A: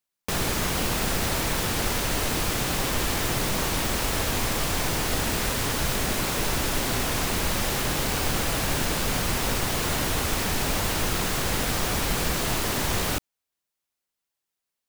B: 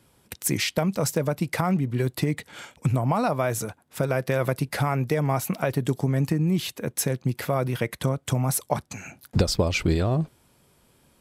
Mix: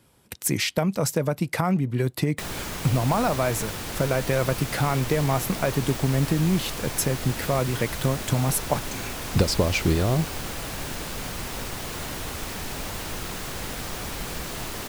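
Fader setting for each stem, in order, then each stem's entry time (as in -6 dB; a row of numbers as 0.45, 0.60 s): -7.0, +0.5 dB; 2.10, 0.00 s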